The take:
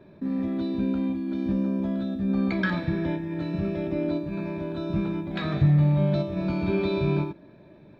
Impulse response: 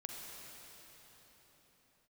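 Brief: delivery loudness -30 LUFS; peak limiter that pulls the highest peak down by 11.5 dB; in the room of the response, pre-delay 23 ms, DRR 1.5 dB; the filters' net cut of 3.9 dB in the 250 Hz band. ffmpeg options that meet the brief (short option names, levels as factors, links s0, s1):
-filter_complex "[0:a]equalizer=f=250:t=o:g=-6,alimiter=level_in=1.06:limit=0.0631:level=0:latency=1,volume=0.944,asplit=2[s0][s1];[1:a]atrim=start_sample=2205,adelay=23[s2];[s1][s2]afir=irnorm=-1:irlink=0,volume=1[s3];[s0][s3]amix=inputs=2:normalize=0,volume=1.19"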